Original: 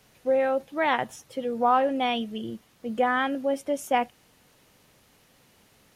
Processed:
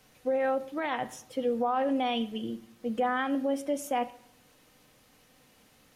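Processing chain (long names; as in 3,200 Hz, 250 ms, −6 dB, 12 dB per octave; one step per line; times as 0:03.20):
brickwall limiter −20 dBFS, peak gain reduction 10 dB
on a send: convolution reverb RT60 0.70 s, pre-delay 4 ms, DRR 7 dB
on the sum: level −2 dB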